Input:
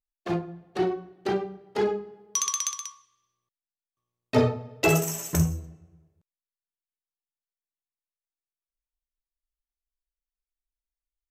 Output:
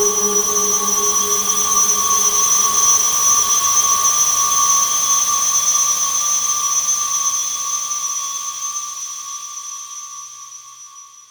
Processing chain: sine folder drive 12 dB, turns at -10.5 dBFS; Paulstretch 11×, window 1.00 s, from 2.22 s; trim +3 dB

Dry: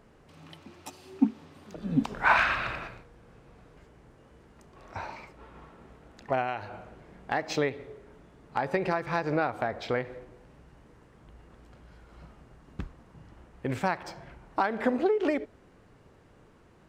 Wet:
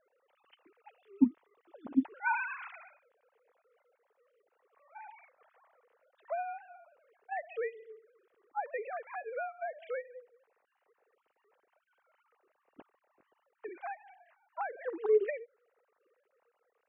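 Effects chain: formants replaced by sine waves; trim -6.5 dB

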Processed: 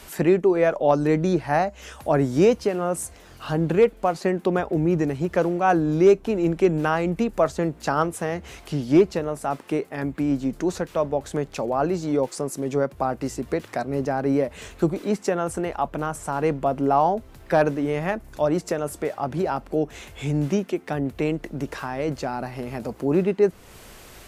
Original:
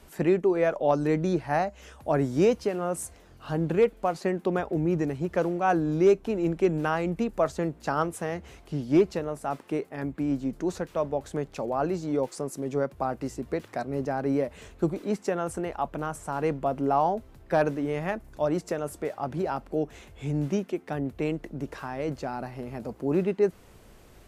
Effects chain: tape noise reduction on one side only encoder only; trim +4.5 dB

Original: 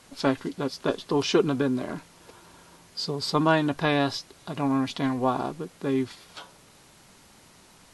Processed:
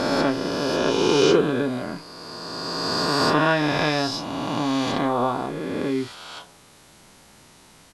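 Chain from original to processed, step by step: reverse spectral sustain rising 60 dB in 2.92 s; doubling 33 ms -11.5 dB; trim -1 dB

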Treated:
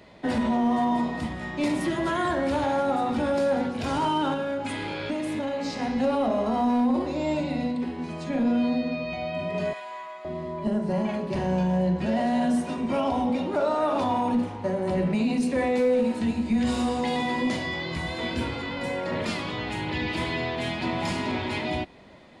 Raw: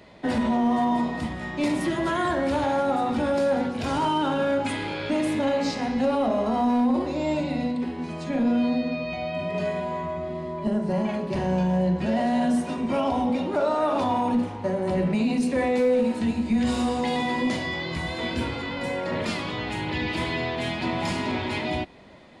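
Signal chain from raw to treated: 4.33–5.80 s: compression, threshold -25 dBFS, peak gain reduction 5.5 dB; 9.73–10.25 s: high-pass 1.1 kHz 12 dB/octave; trim -1 dB

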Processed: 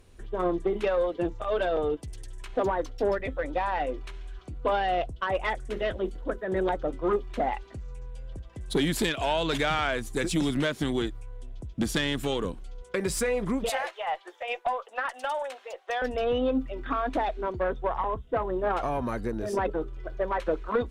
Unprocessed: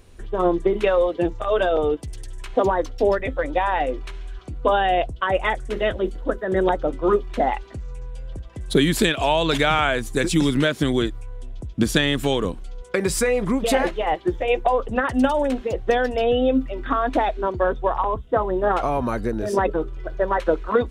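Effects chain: 13.69–16.02 s: high-pass 630 Hz 24 dB/octave; valve stage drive 11 dB, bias 0.25; trim -5.5 dB

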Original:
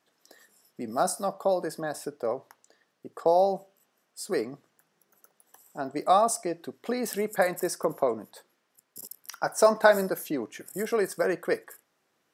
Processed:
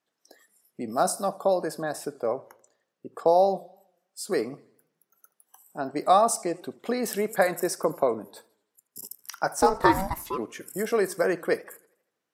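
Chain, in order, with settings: spectral noise reduction 12 dB; 9.58–10.37 s: ring modulator 160 Hz -> 760 Hz; modulated delay 81 ms, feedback 48%, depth 129 cents, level -22 dB; trim +2 dB

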